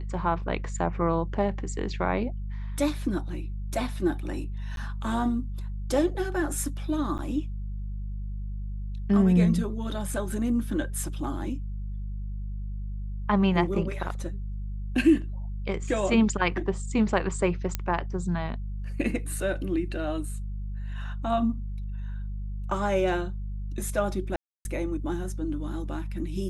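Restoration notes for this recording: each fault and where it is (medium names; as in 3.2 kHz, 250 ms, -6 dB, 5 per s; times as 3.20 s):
hum 50 Hz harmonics 4 -33 dBFS
4.76–4.77 s: dropout 12 ms
7.18–7.19 s: dropout 8.7 ms
17.75 s: pop -12 dBFS
24.36–24.65 s: dropout 291 ms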